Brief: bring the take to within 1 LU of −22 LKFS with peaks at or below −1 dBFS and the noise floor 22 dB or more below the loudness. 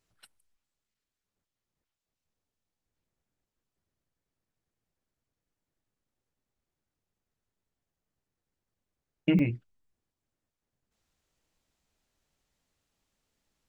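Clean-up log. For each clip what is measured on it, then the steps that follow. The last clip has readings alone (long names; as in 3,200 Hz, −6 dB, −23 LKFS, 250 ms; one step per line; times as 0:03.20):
number of dropouts 1; longest dropout 3.1 ms; integrated loudness −28.0 LKFS; sample peak −12.0 dBFS; target loudness −22.0 LKFS
→ repair the gap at 0:09.39, 3.1 ms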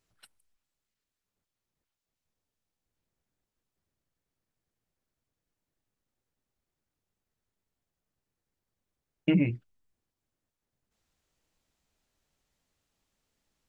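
number of dropouts 0; integrated loudness −28.0 LKFS; sample peak −12.0 dBFS; target loudness −22.0 LKFS
→ level +6 dB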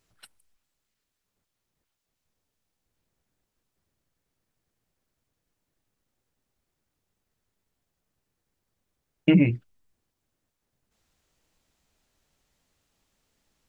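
integrated loudness −22.0 LKFS; sample peak −6.0 dBFS; background noise floor −82 dBFS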